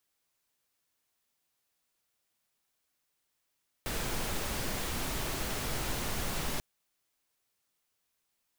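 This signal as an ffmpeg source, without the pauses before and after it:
ffmpeg -f lavfi -i "anoisesrc=color=pink:amplitude=0.102:duration=2.74:sample_rate=44100:seed=1" out.wav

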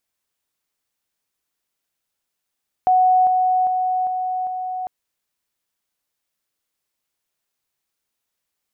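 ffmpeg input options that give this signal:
ffmpeg -f lavfi -i "aevalsrc='pow(10,(-11.5-3*floor(t/0.4))/20)*sin(2*PI*740*t)':duration=2:sample_rate=44100" out.wav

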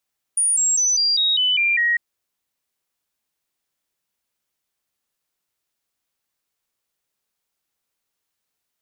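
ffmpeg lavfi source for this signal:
ffmpeg -f lavfi -i "aevalsrc='0.168*clip(min(mod(t,0.2),0.2-mod(t,0.2))/0.005,0,1)*sin(2*PI*9530*pow(2,-floor(t/0.2)/3)*mod(t,0.2))':duration=1.6:sample_rate=44100" out.wav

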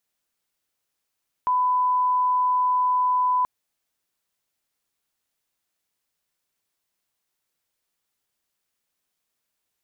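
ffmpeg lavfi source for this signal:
ffmpeg -f lavfi -i "sine=frequency=1000:duration=1.98:sample_rate=44100,volume=0.06dB" out.wav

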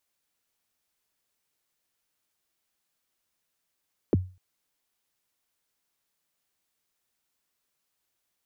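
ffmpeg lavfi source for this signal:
ffmpeg -f lavfi -i "aevalsrc='0.178*pow(10,-3*t/0.33)*sin(2*PI*(500*0.024/log(92/500)*(exp(log(92/500)*min(t,0.024)/0.024)-1)+92*max(t-0.024,0)))':duration=0.25:sample_rate=44100" out.wav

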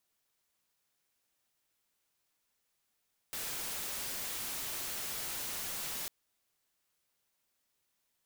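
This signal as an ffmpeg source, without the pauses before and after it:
ffmpeg -f lavfi -i "anoisesrc=color=white:amplitude=0.0194:duration=2.75:sample_rate=44100:seed=1" out.wav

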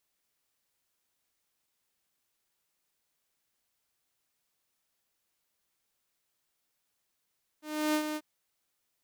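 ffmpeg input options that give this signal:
ffmpeg -f lavfi -i "aevalsrc='0.075*(2*mod(305*t,1)-1)':duration=0.589:sample_rate=44100,afade=type=in:duration=0.324,afade=type=out:start_time=0.324:duration=0.079:silence=0.422,afade=type=out:start_time=0.54:duration=0.049" out.wav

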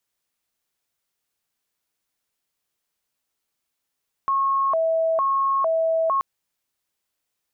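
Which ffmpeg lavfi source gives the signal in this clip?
ffmpeg -f lavfi -i "aevalsrc='0.126*sin(2*PI*(870.5*t+219.5/1.1*(0.5-abs(mod(1.1*t,1)-0.5))))':duration=1.93:sample_rate=44100" out.wav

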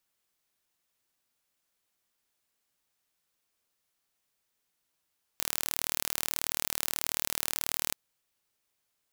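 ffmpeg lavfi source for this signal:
ffmpeg -f lavfi -i "aevalsrc='0.708*eq(mod(n,1148),0)':duration=2.55:sample_rate=44100" out.wav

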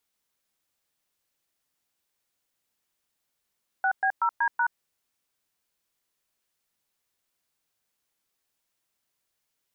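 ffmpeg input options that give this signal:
ffmpeg -f lavfi -i "aevalsrc='0.0668*clip(min(mod(t,0.188),0.075-mod(t,0.188))/0.002,0,1)*(eq(floor(t/0.188),0)*(sin(2*PI*770*mod(t,0.188))+sin(2*PI*1477*mod(t,0.188)))+eq(floor(t/0.188),1)*(sin(2*PI*770*mod(t,0.188))+sin(2*PI*1633*mod(t,0.188)))+eq(floor(t/0.188),2)*(sin(2*PI*941*mod(t,0.188))+sin(2*PI*1336*mod(t,0.188)))+eq(floor(t/0.188),3)*(sin(2*PI*941*mod(t,0.188))+sin(2*PI*1633*mod(t,0.188)))+eq(floor(t/0.188),4)*(sin(2*PI*941*mod(t,0.188))+sin(2*PI*1477*mod(t,0.188))))':duration=0.94:sample_rate=44100" out.wav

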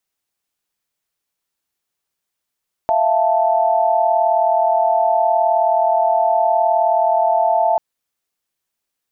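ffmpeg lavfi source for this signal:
ffmpeg -f lavfi -i "aevalsrc='0.141*(sin(2*PI*659.26*t)+sin(2*PI*698.46*t)+sin(2*PI*880*t))':duration=4.89:sample_rate=44100" out.wav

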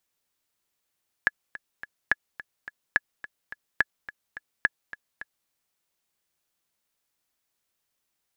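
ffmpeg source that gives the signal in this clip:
ffmpeg -f lavfi -i "aevalsrc='pow(10,(-6.5-17.5*gte(mod(t,3*60/213),60/213))/20)*sin(2*PI*1700*mod(t,60/213))*exp(-6.91*mod(t,60/213)/0.03)':duration=4.22:sample_rate=44100" out.wav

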